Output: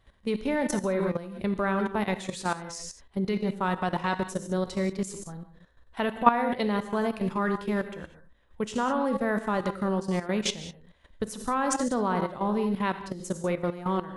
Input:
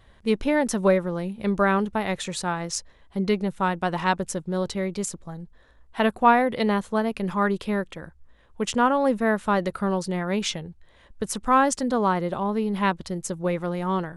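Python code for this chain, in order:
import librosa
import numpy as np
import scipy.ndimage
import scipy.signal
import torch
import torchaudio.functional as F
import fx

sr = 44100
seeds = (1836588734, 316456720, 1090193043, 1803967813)

y = fx.rev_gated(x, sr, seeds[0], gate_ms=220, shape='flat', drr_db=6.5)
y = fx.level_steps(y, sr, step_db=13)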